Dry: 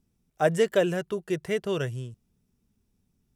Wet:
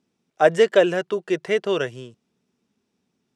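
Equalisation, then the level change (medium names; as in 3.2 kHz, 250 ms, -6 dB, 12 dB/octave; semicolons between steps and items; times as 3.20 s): band-pass 290–5500 Hz; +7.5 dB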